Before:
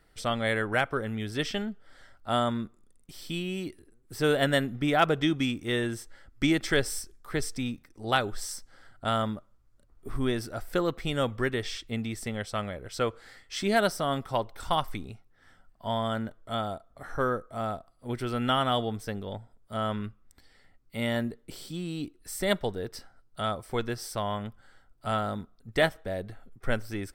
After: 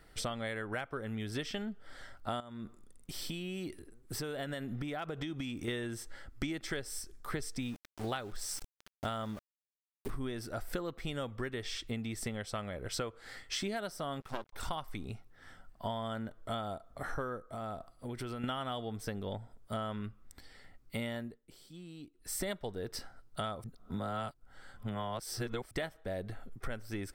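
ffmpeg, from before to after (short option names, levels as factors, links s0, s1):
-filter_complex "[0:a]asettb=1/sr,asplit=3[s0][s1][s2];[s0]atrim=end=2.404[s3];[s1]atrim=start=2.4:end=5.68,asetpts=PTS-STARTPTS,afade=t=in:d=0.004:c=qsin,afade=t=out:st=3.276:d=0.004:c=qsin,acompressor=threshold=0.0126:ratio=6:attack=3.2:release=140:knee=1:detection=peak[s4];[s2]atrim=start=5.676[s5];[s3][s4]acrossfade=d=0.004:c1=hsin:c2=qsin[s6];[s6][s5]acrossfade=d=0.004:c1=qsin:c2=hsin,asettb=1/sr,asplit=3[s7][s8][s9];[s7]atrim=end=7.624[s10];[s8]atrim=start=7.62:end=10.11,asetpts=PTS-STARTPTS,afade=t=in:d=0.004:c=qsin,afade=t=out:st=2.486:d=0.004:c=qsin,aeval=exprs='val(0)*gte(abs(val(0)),0.00668)':c=same[s11];[s9]atrim=start=10.106[s12];[s10][s11]acrossfade=d=0.004:c1=hsin:c2=qsin[s13];[s13][s12]acrossfade=d=0.004:c1=qsin:c2=hsin,asettb=1/sr,asplit=3[s14][s15][s16];[s14]atrim=end=14.204[s17];[s15]atrim=start=14.2:end=14.63,asetpts=PTS-STARTPTS,afade=t=in:d=0.004:c=qsin,afade=t=out:st=0.426:d=0.004:c=qsin,aeval=exprs='max(val(0),0)':c=same[s18];[s16]atrim=start=14.626[s19];[s17][s18]acrossfade=d=0.004:c1=hsin:c2=qsin[s20];[s20][s19]acrossfade=d=0.004:c1=qsin:c2=hsin,asettb=1/sr,asplit=3[s21][s22][s23];[s21]atrim=end=17.544[s24];[s22]atrim=start=17.54:end=18.44,asetpts=PTS-STARTPTS,afade=t=in:d=0.004:c=qsin,afade=t=out:st=0.896:d=0.004:c=qsin,acompressor=threshold=0.01:ratio=6:attack=3.2:release=140:knee=1:detection=peak[s25];[s23]atrim=start=18.436[s26];[s24][s25]acrossfade=d=0.004:c1=hsin:c2=qsin[s27];[s27][s26]acrossfade=d=0.004:c1=qsin:c2=hsin,asplit=5[s28][s29][s30][s31][s32];[s28]atrim=end=21.4,asetpts=PTS-STARTPTS,afade=t=out:st=21.07:d=0.33:silence=0.11885[s33];[s29]atrim=start=21.4:end=22.12,asetpts=PTS-STARTPTS,volume=0.119[s34];[s30]atrim=start=22.12:end=23.642,asetpts=PTS-STARTPTS,afade=t=in:d=0.33:silence=0.11885[s35];[s31]atrim=start=23.638:end=25.712,asetpts=PTS-STARTPTS,areverse[s36];[s32]atrim=start=25.708[s37];[s33][s34][s35]concat=n=3:v=0:a=1[s38];[s38][s36]acrossfade=d=0.004:c1=hsin:c2=hsin[s39];[s39][s37]acrossfade=d=0.004:c1=hsin:c2=hsin,acompressor=threshold=0.0126:ratio=12,volume=1.58"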